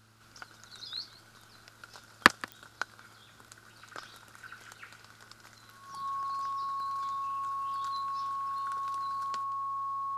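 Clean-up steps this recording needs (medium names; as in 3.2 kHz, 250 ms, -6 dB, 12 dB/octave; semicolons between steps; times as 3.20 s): de-click; de-hum 110.5 Hz, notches 3; band-stop 1.1 kHz, Q 30; inverse comb 178 ms -20.5 dB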